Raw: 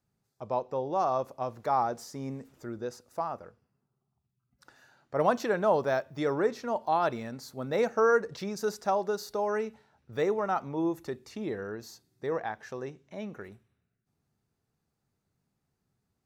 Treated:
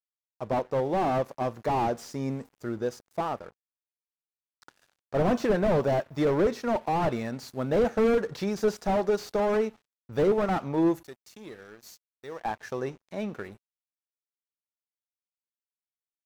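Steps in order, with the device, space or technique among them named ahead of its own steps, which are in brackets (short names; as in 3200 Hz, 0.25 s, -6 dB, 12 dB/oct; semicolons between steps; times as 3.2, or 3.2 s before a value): 11.03–12.45 pre-emphasis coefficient 0.8; early transistor amplifier (crossover distortion -56.5 dBFS; slew limiter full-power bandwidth 22 Hz); gain +6.5 dB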